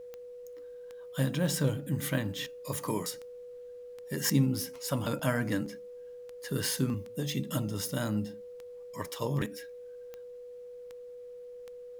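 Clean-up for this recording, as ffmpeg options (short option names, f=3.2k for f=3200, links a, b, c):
-af "adeclick=t=4,bandreject=f=490:w=30,agate=range=-21dB:threshold=-38dB"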